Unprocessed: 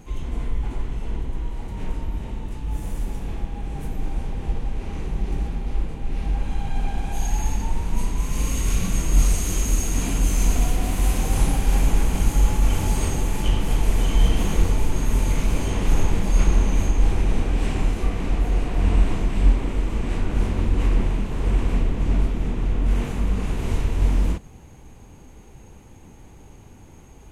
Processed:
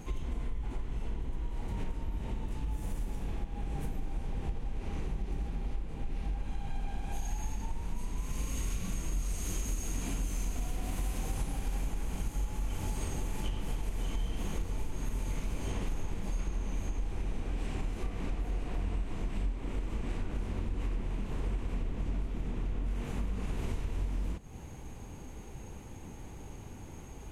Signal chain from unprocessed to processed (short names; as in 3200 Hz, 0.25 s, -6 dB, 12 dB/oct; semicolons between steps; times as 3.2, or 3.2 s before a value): compressor, threshold -31 dBFS, peak gain reduction 19.5 dB